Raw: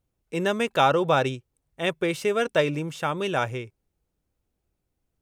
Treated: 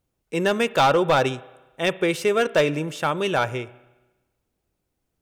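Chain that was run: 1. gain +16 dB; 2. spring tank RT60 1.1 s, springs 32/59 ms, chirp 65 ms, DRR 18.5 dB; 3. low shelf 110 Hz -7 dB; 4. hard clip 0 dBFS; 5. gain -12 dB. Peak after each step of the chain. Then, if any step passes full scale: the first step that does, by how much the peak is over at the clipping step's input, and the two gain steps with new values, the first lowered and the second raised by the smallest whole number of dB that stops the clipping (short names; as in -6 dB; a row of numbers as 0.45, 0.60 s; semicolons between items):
+9.0, +9.0, +9.5, 0.0, -12.0 dBFS; step 1, 9.5 dB; step 1 +6 dB, step 5 -2 dB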